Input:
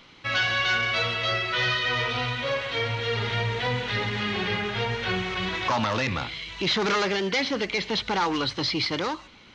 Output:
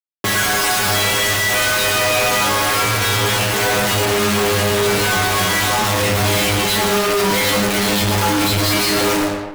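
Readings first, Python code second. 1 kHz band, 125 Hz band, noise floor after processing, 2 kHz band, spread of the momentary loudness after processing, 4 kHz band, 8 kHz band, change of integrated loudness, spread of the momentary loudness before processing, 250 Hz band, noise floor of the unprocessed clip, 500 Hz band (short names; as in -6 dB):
+10.0 dB, +9.5 dB, -21 dBFS, +8.5 dB, 1 LU, +9.0 dB, +24.0 dB, +10.0 dB, 5 LU, +10.0 dB, -51 dBFS, +10.5 dB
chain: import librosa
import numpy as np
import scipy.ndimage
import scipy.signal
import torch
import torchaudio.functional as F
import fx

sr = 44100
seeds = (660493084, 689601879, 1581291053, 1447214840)

p1 = fx.hum_notches(x, sr, base_hz=60, count=7)
p2 = fx.dynamic_eq(p1, sr, hz=140.0, q=5.2, threshold_db=-52.0, ratio=4.0, max_db=-4)
p3 = fx.over_compress(p2, sr, threshold_db=-33.0, ratio=-1.0)
p4 = p2 + (p3 * librosa.db_to_amplitude(2.5))
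p5 = fx.schmitt(p4, sr, flips_db=-26.0)
p6 = fx.stiff_resonator(p5, sr, f0_hz=100.0, decay_s=0.77, stiffness=0.002)
p7 = fx.fuzz(p6, sr, gain_db=52.0, gate_db=-55.0)
p8 = p7 + 10.0 ** (-7.0 / 20.0) * np.pad(p7, (int(111 * sr / 1000.0), 0))[:len(p7)]
y = p8 * librosa.db_to_amplitude(-3.0)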